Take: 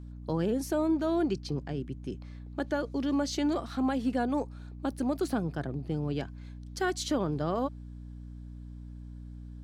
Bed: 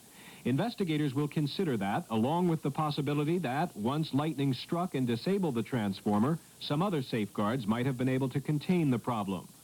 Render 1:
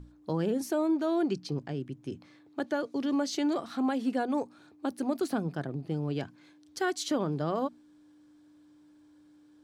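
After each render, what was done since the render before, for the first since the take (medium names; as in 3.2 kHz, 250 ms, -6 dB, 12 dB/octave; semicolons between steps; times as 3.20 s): hum notches 60/120/180/240 Hz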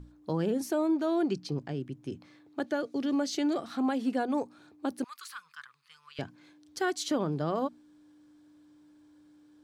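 2.65–3.66 s: peaking EQ 1 kHz -9.5 dB 0.22 oct; 5.04–6.19 s: elliptic high-pass 1.1 kHz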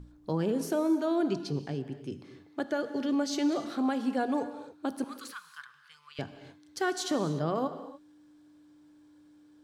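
gated-style reverb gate 320 ms flat, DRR 10 dB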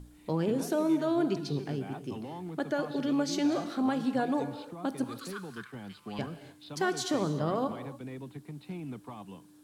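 add bed -12 dB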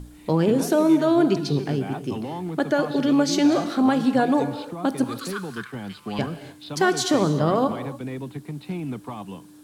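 trim +9.5 dB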